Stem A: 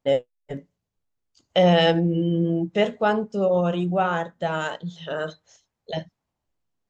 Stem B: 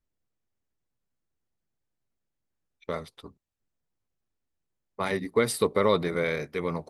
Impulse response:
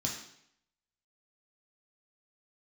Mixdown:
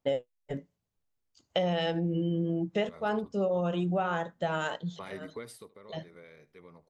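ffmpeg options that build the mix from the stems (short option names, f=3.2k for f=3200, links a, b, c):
-filter_complex "[0:a]volume=-3dB[a];[1:a]alimiter=limit=-21dB:level=0:latency=1:release=400,volume=-7.5dB,afade=t=in:st=2.85:d=0.26:silence=0.251189,afade=t=out:st=5.28:d=0.43:silence=0.237137,asplit=3[b][c][d];[c]volume=-19.5dB[e];[d]apad=whole_len=304246[f];[a][f]sidechaincompress=threshold=-55dB:ratio=8:attack=12:release=168[g];[e]aecho=0:1:75:1[h];[g][b][h]amix=inputs=3:normalize=0,acompressor=threshold=-25dB:ratio=12"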